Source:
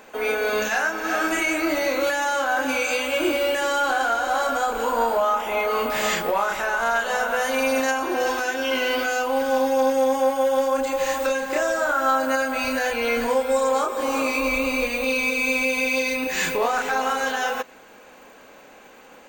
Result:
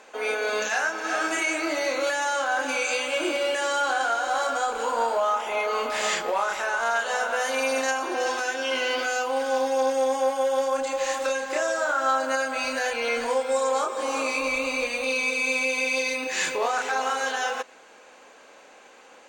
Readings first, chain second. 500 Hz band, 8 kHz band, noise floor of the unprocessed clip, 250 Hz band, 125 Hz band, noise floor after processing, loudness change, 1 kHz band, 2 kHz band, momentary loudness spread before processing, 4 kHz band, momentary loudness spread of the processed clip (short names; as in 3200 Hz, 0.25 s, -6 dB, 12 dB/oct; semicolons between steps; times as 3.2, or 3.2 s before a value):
-3.5 dB, 0.0 dB, -48 dBFS, -8.0 dB, n/a, -51 dBFS, -3.0 dB, -2.5 dB, -2.5 dB, 3 LU, -1.0 dB, 3 LU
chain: LPF 8900 Hz 12 dB/oct; tone controls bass -13 dB, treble +4 dB; gain -2.5 dB